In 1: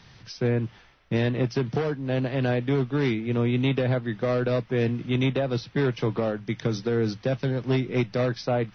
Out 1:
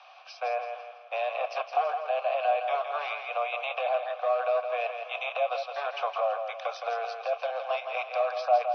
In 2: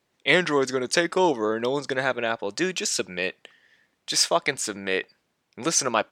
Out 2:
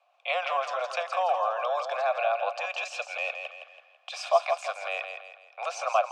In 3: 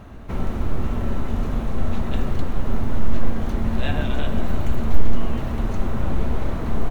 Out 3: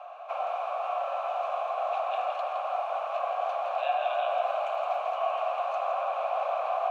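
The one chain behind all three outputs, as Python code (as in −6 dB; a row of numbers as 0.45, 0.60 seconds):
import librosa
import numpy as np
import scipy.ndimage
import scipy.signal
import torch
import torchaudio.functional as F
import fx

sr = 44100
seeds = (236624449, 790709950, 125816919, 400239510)

p1 = scipy.signal.sosfilt(scipy.signal.butter(12, 540.0, 'highpass', fs=sr, output='sos'), x)
p2 = fx.over_compress(p1, sr, threshold_db=-36.0, ratio=-1.0)
p3 = p1 + (p2 * 10.0 ** (1.0 / 20.0))
p4 = fx.vowel_filter(p3, sr, vowel='a')
p5 = fx.echo_feedback(p4, sr, ms=165, feedback_pct=41, wet_db=-7)
y = p5 * 10.0 ** (-30 / 20.0) / np.sqrt(np.mean(np.square(p5)))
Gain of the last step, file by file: +8.0, +6.0, +6.5 decibels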